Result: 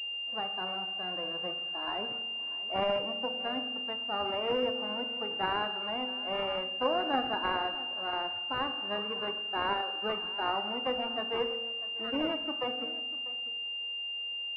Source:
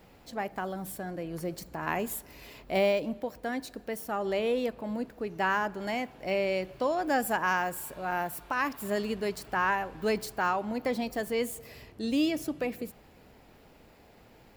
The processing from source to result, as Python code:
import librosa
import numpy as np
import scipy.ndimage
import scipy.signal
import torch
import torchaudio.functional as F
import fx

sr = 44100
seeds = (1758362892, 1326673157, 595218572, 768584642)

y = fx.envelope_flatten(x, sr, power=0.3)
y = scipy.signal.sosfilt(scipy.signal.bessel(2, 450.0, 'highpass', norm='mag', fs=sr, output='sos'), y)
y = fx.env_lowpass(y, sr, base_hz=1100.0, full_db=-28.0)
y = fx.spec_topn(y, sr, count=32)
y = y + 10.0 ** (-18.0 / 20.0) * np.pad(y, (int(644 * sr / 1000.0), 0))[:len(y)]
y = fx.rev_fdn(y, sr, rt60_s=1.1, lf_ratio=1.4, hf_ratio=0.55, size_ms=12.0, drr_db=7.5)
y = fx.pwm(y, sr, carrier_hz=2800.0)
y = y * 10.0 ** (1.5 / 20.0)